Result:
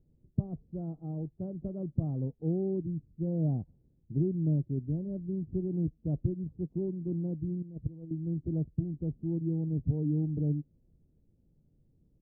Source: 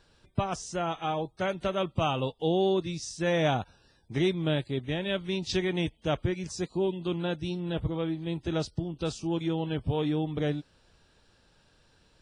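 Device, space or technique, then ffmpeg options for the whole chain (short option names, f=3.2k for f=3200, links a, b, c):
the neighbour's flat through the wall: -filter_complex "[0:a]asettb=1/sr,asplit=3[a][b][c];[a]atrim=end=7.624[d];[b]atrim=start=7.62:end=8.11,asetpts=PTS-STARTPTS,afade=t=in:d=0.004:c=qsin,afade=t=out:st=0.486:d=0.004:c=qsin,agate=range=-13dB:threshold=-27dB:ratio=16:detection=peak[e];[c]atrim=start=8.106[f];[d][e]acrossfade=d=0.004:c1=hsin:c2=qsin[g];[g][f]acrossfade=d=0.004:c1=qsin:c2=hsin,lowpass=f=280:w=0.5412,lowpass=f=280:w=1.3066,firequalizer=gain_entry='entry(200,0);entry(680,13);entry(2500,8)':delay=0.05:min_phase=1,equalizer=f=150:t=o:w=0.44:g=5,volume=-1.5dB"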